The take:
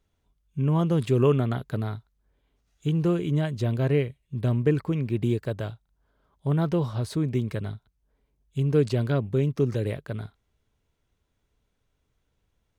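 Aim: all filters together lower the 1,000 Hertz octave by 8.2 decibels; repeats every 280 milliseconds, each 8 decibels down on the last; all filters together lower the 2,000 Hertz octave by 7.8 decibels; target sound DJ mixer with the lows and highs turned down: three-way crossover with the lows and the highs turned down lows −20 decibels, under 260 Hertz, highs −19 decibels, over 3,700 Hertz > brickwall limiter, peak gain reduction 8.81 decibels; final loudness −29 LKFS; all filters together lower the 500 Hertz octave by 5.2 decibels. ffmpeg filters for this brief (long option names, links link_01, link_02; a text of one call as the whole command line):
ffmpeg -i in.wav -filter_complex "[0:a]acrossover=split=260 3700:gain=0.1 1 0.112[link_01][link_02][link_03];[link_01][link_02][link_03]amix=inputs=3:normalize=0,equalizer=frequency=500:width_type=o:gain=-3.5,equalizer=frequency=1000:width_type=o:gain=-8,equalizer=frequency=2000:width_type=o:gain=-6.5,aecho=1:1:280|560|840|1120|1400:0.398|0.159|0.0637|0.0255|0.0102,volume=8.5dB,alimiter=limit=-17.5dB:level=0:latency=1" out.wav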